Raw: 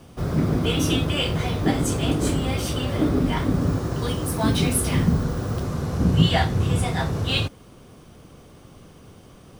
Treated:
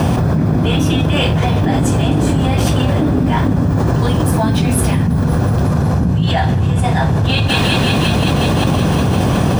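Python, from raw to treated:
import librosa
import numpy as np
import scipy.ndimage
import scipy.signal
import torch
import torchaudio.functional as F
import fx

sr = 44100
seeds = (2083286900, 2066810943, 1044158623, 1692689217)

y = scipy.signal.sosfilt(scipy.signal.butter(2, 74.0, 'highpass', fs=sr, output='sos'), x)
y = fx.high_shelf(y, sr, hz=2300.0, db=-9.0)
y = y + 0.36 * np.pad(y, (int(1.2 * sr / 1000.0), 0))[:len(y)]
y = fx.echo_thinned(y, sr, ms=181, feedback_pct=81, hz=770.0, wet_db=-20.0)
y = fx.env_flatten(y, sr, amount_pct=100)
y = y * 10.0 ** (-2.5 / 20.0)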